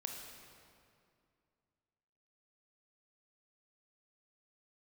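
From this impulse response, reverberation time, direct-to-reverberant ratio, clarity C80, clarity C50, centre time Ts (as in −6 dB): 2.4 s, 1.5 dB, 4.0 dB, 3.0 dB, 75 ms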